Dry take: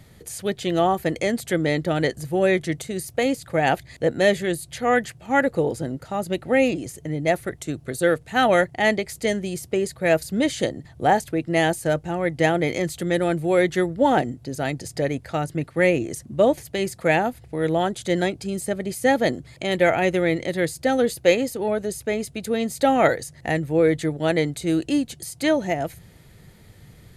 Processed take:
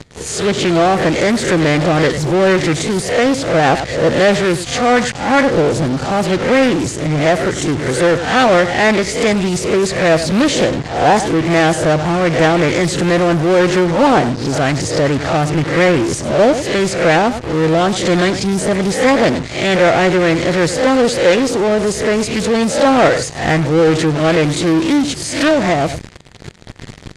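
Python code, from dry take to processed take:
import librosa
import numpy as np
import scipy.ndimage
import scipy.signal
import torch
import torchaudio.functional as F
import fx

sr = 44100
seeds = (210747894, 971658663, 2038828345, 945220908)

p1 = fx.spec_swells(x, sr, rise_s=0.33)
p2 = p1 + fx.echo_single(p1, sr, ms=99, db=-18.5, dry=0)
p3 = fx.leveller(p2, sr, passes=1)
p4 = fx.fuzz(p3, sr, gain_db=40.0, gate_db=-42.0)
p5 = p3 + F.gain(torch.from_numpy(p4), -5.0).numpy()
p6 = scipy.signal.sosfilt(scipy.signal.butter(4, 7800.0, 'lowpass', fs=sr, output='sos'), p5)
y = fx.doppler_dist(p6, sr, depth_ms=0.31)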